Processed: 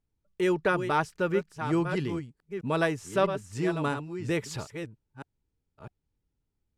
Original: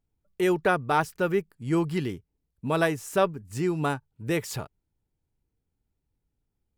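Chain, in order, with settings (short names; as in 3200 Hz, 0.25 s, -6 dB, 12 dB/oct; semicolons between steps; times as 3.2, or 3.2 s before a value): reverse delay 0.653 s, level -8.5 dB; LPF 8000 Hz 12 dB/oct; notch 730 Hz, Q 12; gain -2 dB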